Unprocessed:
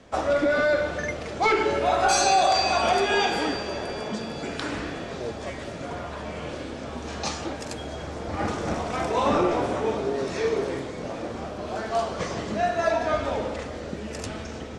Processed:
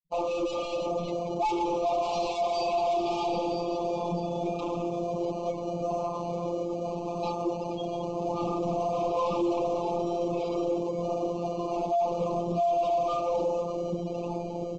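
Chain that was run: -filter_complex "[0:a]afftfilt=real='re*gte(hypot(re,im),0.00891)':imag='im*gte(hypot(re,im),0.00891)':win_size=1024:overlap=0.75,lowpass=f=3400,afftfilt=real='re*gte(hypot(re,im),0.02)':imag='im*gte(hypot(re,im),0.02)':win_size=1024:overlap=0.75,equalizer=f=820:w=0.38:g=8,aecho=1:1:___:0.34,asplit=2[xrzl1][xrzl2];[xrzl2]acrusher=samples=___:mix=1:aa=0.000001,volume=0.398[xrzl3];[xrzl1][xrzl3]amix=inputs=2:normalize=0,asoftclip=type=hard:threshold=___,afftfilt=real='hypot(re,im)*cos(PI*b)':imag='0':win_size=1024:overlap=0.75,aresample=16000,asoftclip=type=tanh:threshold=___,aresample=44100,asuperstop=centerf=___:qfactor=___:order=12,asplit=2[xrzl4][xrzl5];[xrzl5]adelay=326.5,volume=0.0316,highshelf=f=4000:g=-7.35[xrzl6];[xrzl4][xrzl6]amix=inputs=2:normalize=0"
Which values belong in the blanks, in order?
5.6, 25, 0.133, 0.0891, 1700, 1.5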